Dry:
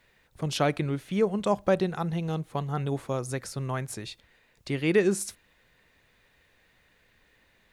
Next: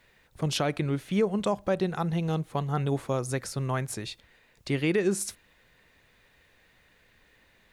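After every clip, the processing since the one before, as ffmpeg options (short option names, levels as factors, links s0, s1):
-af "alimiter=limit=0.126:level=0:latency=1:release=190,volume=1.26"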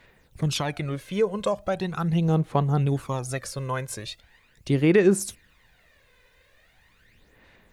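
-af "aphaser=in_gain=1:out_gain=1:delay=2:decay=0.58:speed=0.4:type=sinusoidal"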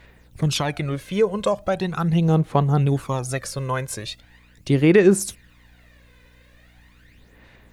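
-af "aeval=exprs='val(0)+0.00141*(sin(2*PI*60*n/s)+sin(2*PI*2*60*n/s)/2+sin(2*PI*3*60*n/s)/3+sin(2*PI*4*60*n/s)/4+sin(2*PI*5*60*n/s)/5)':c=same,volume=1.58"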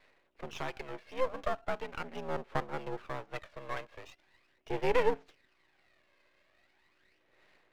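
-af "highpass=f=280:t=q:w=0.5412,highpass=f=280:t=q:w=1.307,lowpass=f=2900:t=q:w=0.5176,lowpass=f=2900:t=q:w=0.7071,lowpass=f=2900:t=q:w=1.932,afreqshift=73,aeval=exprs='max(val(0),0)':c=same,volume=0.398"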